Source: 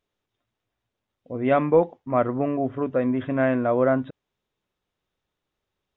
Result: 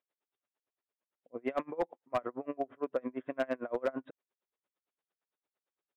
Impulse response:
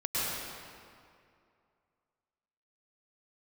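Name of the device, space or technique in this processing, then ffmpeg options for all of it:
helicopter radio: -af "highpass=360,lowpass=2.7k,aeval=exprs='val(0)*pow(10,-31*(0.5-0.5*cos(2*PI*8.8*n/s))/20)':c=same,asoftclip=type=hard:threshold=-19.5dB,volume=-3.5dB"

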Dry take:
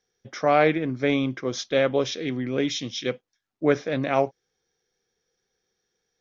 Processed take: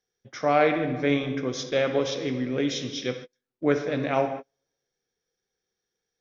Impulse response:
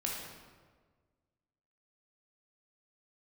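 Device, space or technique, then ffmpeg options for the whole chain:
keyed gated reverb: -filter_complex "[0:a]asplit=3[a][b][c];[1:a]atrim=start_sample=2205[d];[b][d]afir=irnorm=-1:irlink=0[e];[c]apad=whole_len=273759[f];[e][f]sidechaingate=range=-42dB:threshold=-40dB:ratio=16:detection=peak,volume=-3.5dB[g];[a][g]amix=inputs=2:normalize=0,volume=-6.5dB"

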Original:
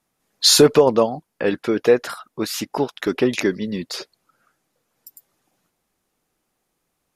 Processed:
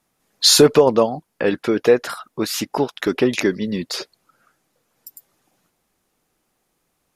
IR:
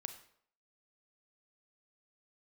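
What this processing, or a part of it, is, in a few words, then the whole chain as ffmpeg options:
parallel compression: -filter_complex "[0:a]asplit=2[a][b];[b]acompressor=threshold=-26dB:ratio=6,volume=-6dB[c];[a][c]amix=inputs=2:normalize=0"

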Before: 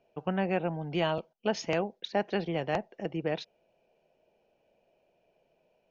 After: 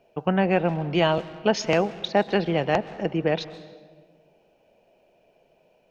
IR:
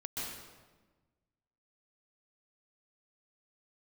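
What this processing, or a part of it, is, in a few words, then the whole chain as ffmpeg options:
saturated reverb return: -filter_complex "[0:a]asplit=2[a][b];[1:a]atrim=start_sample=2205[c];[b][c]afir=irnorm=-1:irlink=0,asoftclip=type=tanh:threshold=-31dB,volume=-12.5dB[d];[a][d]amix=inputs=2:normalize=0,volume=7.5dB"

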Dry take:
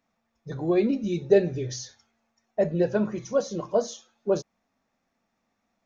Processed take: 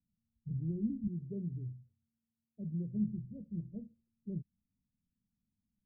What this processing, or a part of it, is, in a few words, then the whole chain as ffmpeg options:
the neighbour's flat through the wall: -filter_complex "[0:a]asettb=1/sr,asplit=3[a][b][c];[a]atrim=end=1.074[d];[b]atrim=start=1.07:end=2.94,asetpts=PTS-STARTPTS,afade=t=in:d=0.004:c=qsin,afade=t=out:st=1.866:d=0.004:c=qsin,highpass=f=240:p=1[e];[c]atrim=start=2.936[f];[d][e]acrossfade=d=0.004:c1=hsin:c2=qsin[g];[g][f]acrossfade=d=0.004:c1=qsin:c2=hsin,lowpass=f=190:w=0.5412,lowpass=f=190:w=1.3066,equalizer=f=88:t=o:w=0.77:g=4,bandreject=f=1.1k:w=12,volume=-1.5dB"

